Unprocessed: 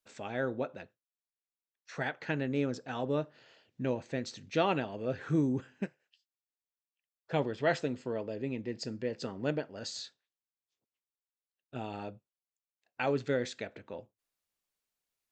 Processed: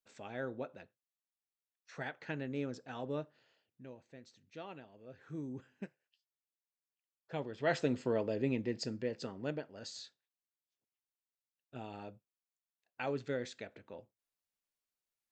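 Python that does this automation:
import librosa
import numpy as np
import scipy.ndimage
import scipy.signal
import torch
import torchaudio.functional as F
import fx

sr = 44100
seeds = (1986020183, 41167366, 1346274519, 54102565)

y = fx.gain(x, sr, db=fx.line((3.19, -7.0), (3.91, -19.0), (5.08, -19.0), (5.75, -9.0), (7.47, -9.0), (7.92, 2.5), (8.52, 2.5), (9.52, -6.5)))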